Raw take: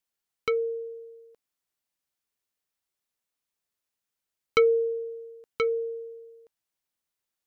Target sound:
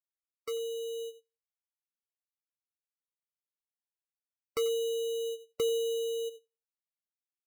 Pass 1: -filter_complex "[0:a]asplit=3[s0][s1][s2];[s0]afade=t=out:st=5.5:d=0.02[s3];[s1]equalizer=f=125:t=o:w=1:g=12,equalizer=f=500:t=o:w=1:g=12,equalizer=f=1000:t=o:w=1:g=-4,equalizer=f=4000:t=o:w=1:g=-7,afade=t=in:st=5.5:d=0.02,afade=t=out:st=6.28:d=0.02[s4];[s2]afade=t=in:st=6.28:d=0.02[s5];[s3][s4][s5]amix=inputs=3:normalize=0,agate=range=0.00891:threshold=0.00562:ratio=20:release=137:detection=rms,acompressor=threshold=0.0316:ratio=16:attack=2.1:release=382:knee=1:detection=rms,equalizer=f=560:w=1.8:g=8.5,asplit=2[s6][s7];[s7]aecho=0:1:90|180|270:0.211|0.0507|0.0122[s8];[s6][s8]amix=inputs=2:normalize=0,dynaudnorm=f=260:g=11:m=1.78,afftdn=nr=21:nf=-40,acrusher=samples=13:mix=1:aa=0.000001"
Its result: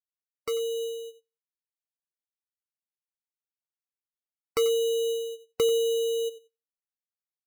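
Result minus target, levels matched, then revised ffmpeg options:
compression: peak gain reduction -6 dB
-filter_complex "[0:a]asplit=3[s0][s1][s2];[s0]afade=t=out:st=5.5:d=0.02[s3];[s1]equalizer=f=125:t=o:w=1:g=12,equalizer=f=500:t=o:w=1:g=12,equalizer=f=1000:t=o:w=1:g=-4,equalizer=f=4000:t=o:w=1:g=-7,afade=t=in:st=5.5:d=0.02,afade=t=out:st=6.28:d=0.02[s4];[s2]afade=t=in:st=6.28:d=0.02[s5];[s3][s4][s5]amix=inputs=3:normalize=0,agate=range=0.00891:threshold=0.00562:ratio=20:release=137:detection=rms,acompressor=threshold=0.015:ratio=16:attack=2.1:release=382:knee=1:detection=rms,equalizer=f=560:w=1.8:g=8.5,asplit=2[s6][s7];[s7]aecho=0:1:90|180|270:0.211|0.0507|0.0122[s8];[s6][s8]amix=inputs=2:normalize=0,dynaudnorm=f=260:g=11:m=1.78,afftdn=nr=21:nf=-40,acrusher=samples=13:mix=1:aa=0.000001"

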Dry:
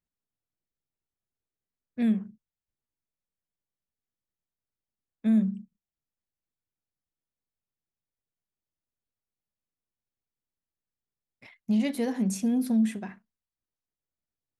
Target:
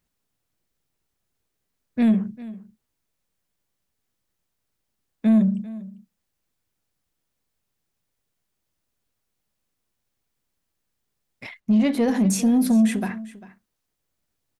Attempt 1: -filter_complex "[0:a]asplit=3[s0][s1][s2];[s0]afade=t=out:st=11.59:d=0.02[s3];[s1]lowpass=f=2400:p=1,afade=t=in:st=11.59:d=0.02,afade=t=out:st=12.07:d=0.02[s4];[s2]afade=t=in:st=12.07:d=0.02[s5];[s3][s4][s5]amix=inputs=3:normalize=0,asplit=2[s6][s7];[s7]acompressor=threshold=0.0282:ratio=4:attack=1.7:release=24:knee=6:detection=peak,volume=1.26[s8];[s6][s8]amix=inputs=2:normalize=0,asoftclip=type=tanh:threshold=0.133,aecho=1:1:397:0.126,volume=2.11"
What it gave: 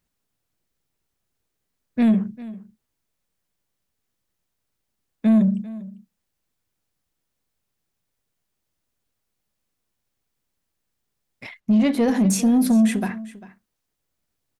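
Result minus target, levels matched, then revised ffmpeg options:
compression: peak gain reduction -6 dB
-filter_complex "[0:a]asplit=3[s0][s1][s2];[s0]afade=t=out:st=11.59:d=0.02[s3];[s1]lowpass=f=2400:p=1,afade=t=in:st=11.59:d=0.02,afade=t=out:st=12.07:d=0.02[s4];[s2]afade=t=in:st=12.07:d=0.02[s5];[s3][s4][s5]amix=inputs=3:normalize=0,asplit=2[s6][s7];[s7]acompressor=threshold=0.0112:ratio=4:attack=1.7:release=24:knee=6:detection=peak,volume=1.26[s8];[s6][s8]amix=inputs=2:normalize=0,asoftclip=type=tanh:threshold=0.133,aecho=1:1:397:0.126,volume=2.11"

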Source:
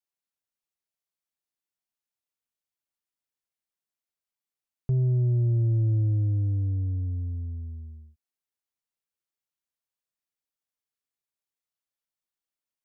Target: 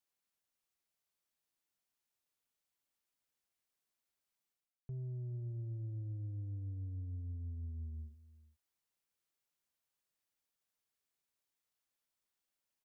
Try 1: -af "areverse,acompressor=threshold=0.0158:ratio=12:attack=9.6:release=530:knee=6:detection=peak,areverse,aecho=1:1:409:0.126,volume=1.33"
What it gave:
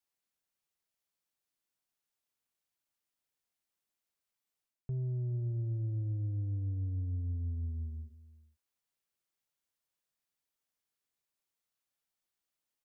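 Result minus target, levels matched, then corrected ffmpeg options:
compression: peak gain reduction -7.5 dB
-af "areverse,acompressor=threshold=0.00631:ratio=12:attack=9.6:release=530:knee=6:detection=peak,areverse,aecho=1:1:409:0.126,volume=1.33"

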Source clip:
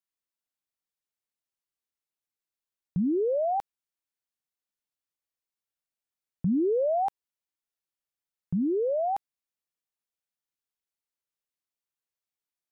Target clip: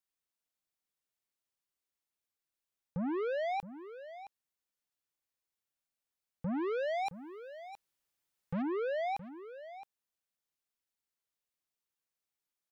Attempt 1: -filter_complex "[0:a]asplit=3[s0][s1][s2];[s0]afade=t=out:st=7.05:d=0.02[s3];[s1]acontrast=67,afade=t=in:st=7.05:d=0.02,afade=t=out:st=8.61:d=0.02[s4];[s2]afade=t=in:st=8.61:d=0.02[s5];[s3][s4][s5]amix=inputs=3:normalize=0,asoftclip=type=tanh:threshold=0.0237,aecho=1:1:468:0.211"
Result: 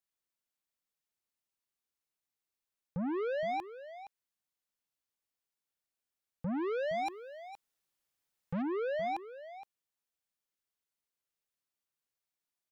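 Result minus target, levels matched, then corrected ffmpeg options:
echo 200 ms early
-filter_complex "[0:a]asplit=3[s0][s1][s2];[s0]afade=t=out:st=7.05:d=0.02[s3];[s1]acontrast=67,afade=t=in:st=7.05:d=0.02,afade=t=out:st=8.61:d=0.02[s4];[s2]afade=t=in:st=8.61:d=0.02[s5];[s3][s4][s5]amix=inputs=3:normalize=0,asoftclip=type=tanh:threshold=0.0237,aecho=1:1:668:0.211"

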